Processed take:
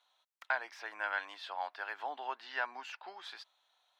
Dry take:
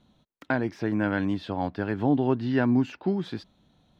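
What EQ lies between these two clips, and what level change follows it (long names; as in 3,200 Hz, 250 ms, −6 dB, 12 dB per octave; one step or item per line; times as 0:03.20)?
high-pass filter 810 Hz 24 dB per octave
−2.5 dB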